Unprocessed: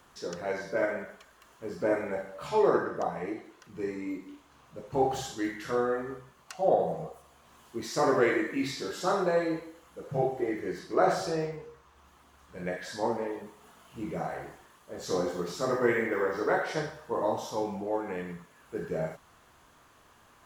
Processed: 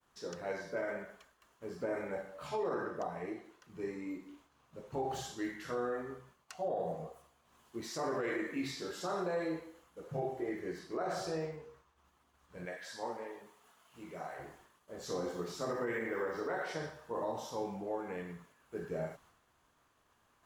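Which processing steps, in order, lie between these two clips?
expander -53 dBFS; 12.65–14.39 s: bass shelf 410 Hz -11.5 dB; peak limiter -21.5 dBFS, peak gain reduction 10 dB; trim -6 dB

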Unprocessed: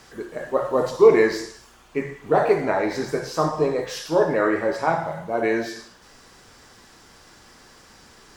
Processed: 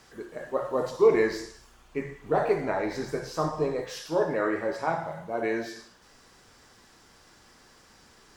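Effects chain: 1.15–3.82 s: bass shelf 66 Hz +11 dB; trim -6.5 dB

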